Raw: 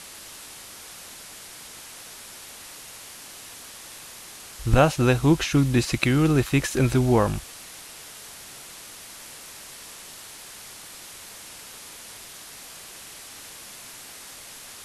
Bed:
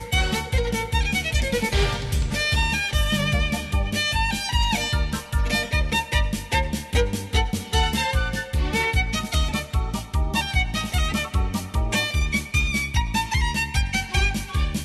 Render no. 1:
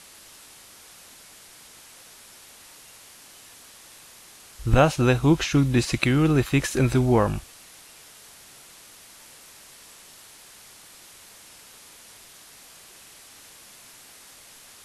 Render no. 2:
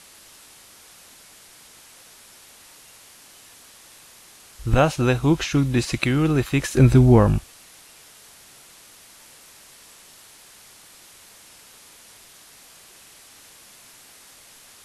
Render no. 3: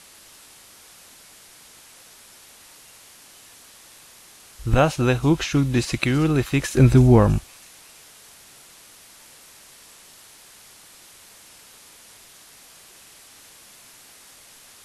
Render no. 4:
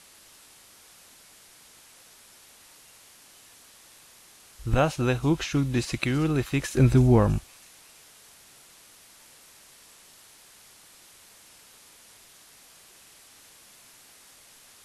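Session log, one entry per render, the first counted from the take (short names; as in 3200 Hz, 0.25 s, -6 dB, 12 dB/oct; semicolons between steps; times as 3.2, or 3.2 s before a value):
noise print and reduce 6 dB
6.77–7.38 low shelf 330 Hz +10 dB
thin delay 0.326 s, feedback 61%, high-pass 3900 Hz, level -13.5 dB
gain -5 dB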